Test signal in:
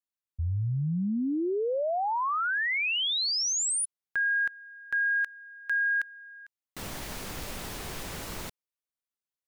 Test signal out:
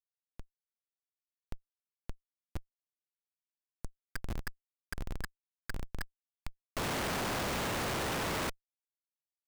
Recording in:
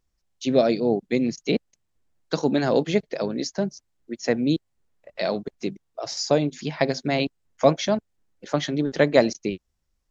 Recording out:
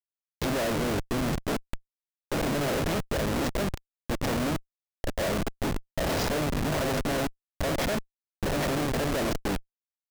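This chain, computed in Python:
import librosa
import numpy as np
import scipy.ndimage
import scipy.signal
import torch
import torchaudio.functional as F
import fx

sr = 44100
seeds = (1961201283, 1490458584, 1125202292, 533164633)

y = fx.bin_compress(x, sr, power=0.4)
y = fx.schmitt(y, sr, flips_db=-21.5)
y = y * librosa.db_to_amplitude(-8.0)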